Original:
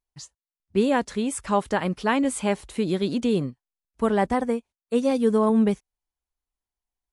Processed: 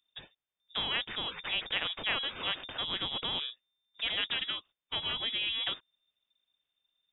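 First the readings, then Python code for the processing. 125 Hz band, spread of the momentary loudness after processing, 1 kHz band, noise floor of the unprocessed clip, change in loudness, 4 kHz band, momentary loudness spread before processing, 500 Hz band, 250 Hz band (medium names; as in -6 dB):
-19.0 dB, 7 LU, -14.5 dB, under -85 dBFS, -8.5 dB, +10.0 dB, 7 LU, -23.5 dB, -28.0 dB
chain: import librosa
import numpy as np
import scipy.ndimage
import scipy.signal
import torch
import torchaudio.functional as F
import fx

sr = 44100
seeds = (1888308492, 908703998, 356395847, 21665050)

y = fx.freq_invert(x, sr, carrier_hz=3600)
y = fx.spectral_comp(y, sr, ratio=2.0)
y = y * 10.0 ** (-8.0 / 20.0)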